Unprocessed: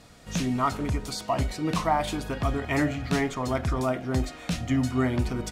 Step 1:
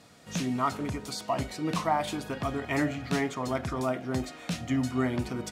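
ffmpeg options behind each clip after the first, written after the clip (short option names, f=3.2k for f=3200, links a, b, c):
-af "highpass=120,volume=-2.5dB"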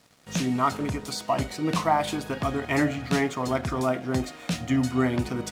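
-af "aeval=exprs='sgn(val(0))*max(abs(val(0))-0.00168,0)':c=same,volume=4.5dB"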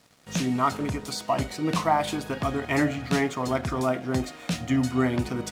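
-af anull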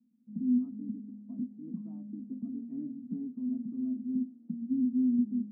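-af "asuperpass=centerf=230:order=4:qfactor=5.9,volume=4dB"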